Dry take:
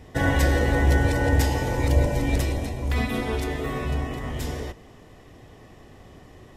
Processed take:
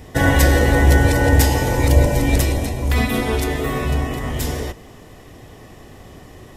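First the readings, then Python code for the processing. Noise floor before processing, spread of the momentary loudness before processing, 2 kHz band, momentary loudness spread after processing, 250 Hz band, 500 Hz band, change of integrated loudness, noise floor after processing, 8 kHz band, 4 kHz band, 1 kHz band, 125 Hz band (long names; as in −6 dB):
−49 dBFS, 10 LU, +7.0 dB, 10 LU, +6.5 dB, +6.5 dB, +6.5 dB, −42 dBFS, +10.5 dB, +8.0 dB, +6.5 dB, +6.5 dB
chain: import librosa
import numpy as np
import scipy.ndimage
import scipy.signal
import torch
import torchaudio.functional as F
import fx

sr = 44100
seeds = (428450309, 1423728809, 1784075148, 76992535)

y = fx.high_shelf(x, sr, hz=8400.0, db=9.5)
y = y * 10.0 ** (6.5 / 20.0)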